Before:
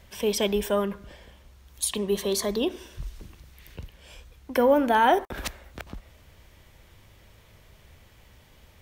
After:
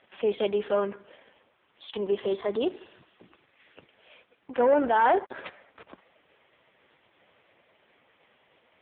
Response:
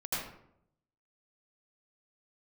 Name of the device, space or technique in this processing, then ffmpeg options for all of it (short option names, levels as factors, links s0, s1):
telephone: -af "highpass=330,lowpass=3600,asoftclip=type=tanh:threshold=0.141,volume=1.33" -ar 8000 -c:a libopencore_amrnb -b:a 4750